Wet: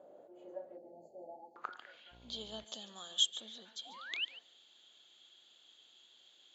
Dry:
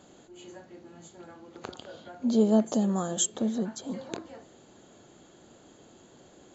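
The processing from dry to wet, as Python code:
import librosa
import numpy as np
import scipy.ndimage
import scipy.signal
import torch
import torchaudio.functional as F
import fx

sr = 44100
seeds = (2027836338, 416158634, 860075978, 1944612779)

p1 = fx.brickwall_bandstop(x, sr, low_hz=900.0, high_hz=4100.0, at=(0.77, 1.56))
p2 = fx.spec_paint(p1, sr, seeds[0], shape='rise', start_s=3.85, length_s=0.4, low_hz=670.0, high_hz=3200.0, level_db=-35.0)
p3 = fx.filter_sweep_bandpass(p2, sr, from_hz=580.0, to_hz=3400.0, start_s=1.24, end_s=2.17, q=5.8)
p4 = p3 + fx.echo_single(p3, sr, ms=143, db=-16.5, dry=0)
p5 = fx.dmg_buzz(p4, sr, base_hz=60.0, harmonics=18, level_db=-68.0, tilt_db=-5, odd_only=False, at=(2.11, 2.63), fade=0.02)
y = p5 * 10.0 ** (7.5 / 20.0)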